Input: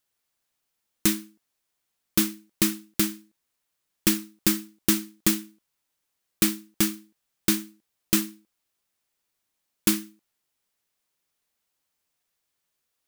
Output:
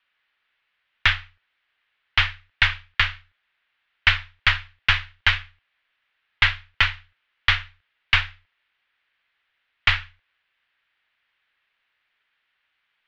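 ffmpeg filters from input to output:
-af "equalizer=f=125:t=o:w=1:g=-11,equalizer=f=250:t=o:w=1:g=4,equalizer=f=500:t=o:w=1:g=-4,equalizer=f=2000:t=o:w=1:g=10,highpass=f=160:t=q:w=0.5412,highpass=f=160:t=q:w=1.307,lowpass=f=3500:t=q:w=0.5176,lowpass=f=3500:t=q:w=0.7071,lowpass=f=3500:t=q:w=1.932,afreqshift=-300,crystalizer=i=9.5:c=0,volume=0.891"

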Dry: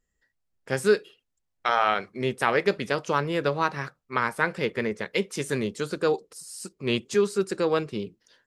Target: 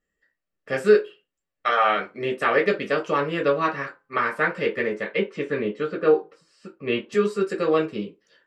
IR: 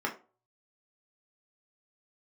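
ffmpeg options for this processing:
-filter_complex "[0:a]asplit=3[s0][s1][s2];[s0]afade=t=out:st=5.1:d=0.02[s3];[s1]lowpass=2900,afade=t=in:st=5.1:d=0.02,afade=t=out:st=7.11:d=0.02[s4];[s2]afade=t=in:st=7.11:d=0.02[s5];[s3][s4][s5]amix=inputs=3:normalize=0[s6];[1:a]atrim=start_sample=2205,asetrate=61740,aresample=44100[s7];[s6][s7]afir=irnorm=-1:irlink=0,volume=0.794"

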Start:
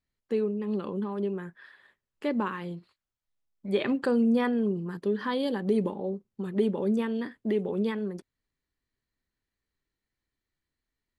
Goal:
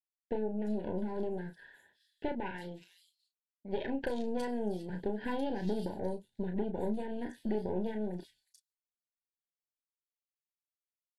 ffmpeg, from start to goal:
-filter_complex "[0:a]asettb=1/sr,asplit=3[s0][s1][s2];[s0]atrim=end=2.324[s3];[s1]atrim=start=2.32:end=4.9,asetpts=PTS-STARTPTS,afade=t=in:d=0.004:c=qsin,afade=t=out:st=2.576:d=0.004:c=qsin,highpass=f=450:p=1[s4];[s2]atrim=start=4.896[s5];[s3][s4]acrossfade=d=0.004:c1=hsin:c2=qsin[s6];[s6][s5]acrossfade=d=0.004:c1=qsin:c2=hsin,agate=range=0.0224:threshold=0.00158:ratio=3:detection=peak,equalizer=f=2300:w=2.7:g=-9,acompressor=threshold=0.0316:ratio=20,aeval=exprs='0.1*(cos(1*acos(clip(val(0)/0.1,-1,1)))-cos(1*PI/2))+0.00562*(cos(3*acos(clip(val(0)/0.1,-1,1)))-cos(3*PI/2))+0.0141*(cos(4*acos(clip(val(0)/0.1,-1,1)))-cos(4*PI/2))+0.00251*(cos(8*acos(clip(val(0)/0.1,-1,1)))-cos(8*PI/2))':c=same,asuperstop=centerf=1200:order=20:qfactor=2.7,asplit=2[s7][s8];[s8]adelay=33,volume=0.447[s9];[s7][s9]amix=inputs=2:normalize=0,acrossover=split=3700[s10][s11];[s11]adelay=360[s12];[s10][s12]amix=inputs=2:normalize=0" -ar 44100 -c:a aac -b:a 64k

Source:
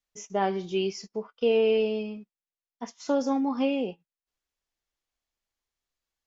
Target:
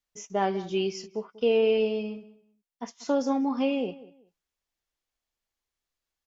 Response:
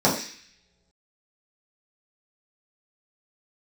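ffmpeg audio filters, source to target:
-filter_complex "[0:a]asplit=2[s0][s1];[s1]adelay=191,lowpass=f=2800:p=1,volume=0.126,asplit=2[s2][s3];[s3]adelay=191,lowpass=f=2800:p=1,volume=0.24[s4];[s0][s2][s4]amix=inputs=3:normalize=0"

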